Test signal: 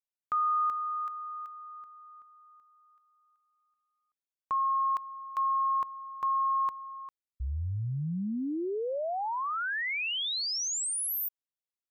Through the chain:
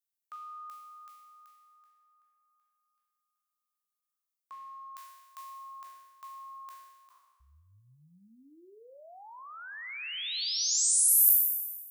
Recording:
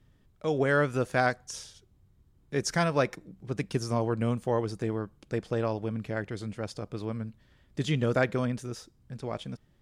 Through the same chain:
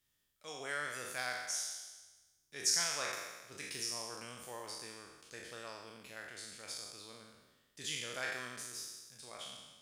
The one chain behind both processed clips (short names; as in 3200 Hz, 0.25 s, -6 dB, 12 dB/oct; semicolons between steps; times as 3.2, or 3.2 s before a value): spectral trails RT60 1.25 s; pre-emphasis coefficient 0.97; flutter echo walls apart 6.9 m, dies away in 0.2 s